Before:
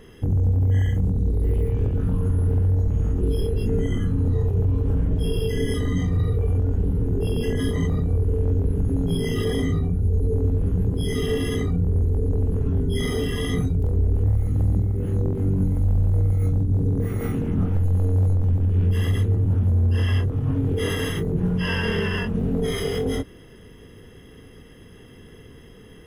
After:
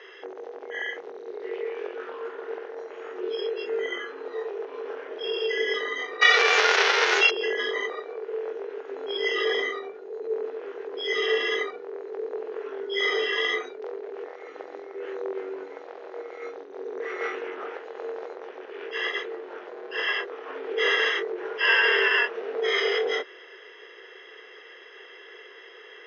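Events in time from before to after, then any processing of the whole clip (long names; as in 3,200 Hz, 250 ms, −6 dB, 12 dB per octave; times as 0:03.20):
0:06.21–0:07.29: spectral envelope flattened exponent 0.3
0:07.91–0:08.97: high-pass filter 290 Hz
whole clip: Chebyshev band-pass filter 370–5,900 Hz, order 5; parametric band 1,900 Hz +11 dB 1.8 octaves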